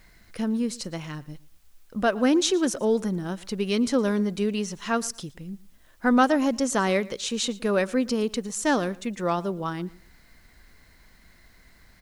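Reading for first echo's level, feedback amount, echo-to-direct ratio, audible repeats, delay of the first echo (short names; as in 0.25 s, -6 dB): -21.5 dB, 23%, -21.5 dB, 2, 0.115 s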